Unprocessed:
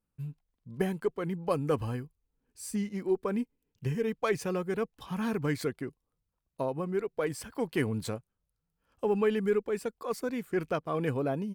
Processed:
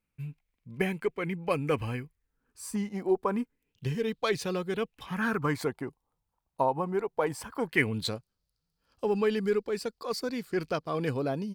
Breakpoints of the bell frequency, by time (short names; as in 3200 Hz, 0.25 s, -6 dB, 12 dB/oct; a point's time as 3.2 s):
bell +14 dB 0.61 oct
1.99 s 2300 Hz
3.13 s 640 Hz
3.87 s 3900 Hz
4.67 s 3900 Hz
5.62 s 870 Hz
7.4 s 870 Hz
8.13 s 4600 Hz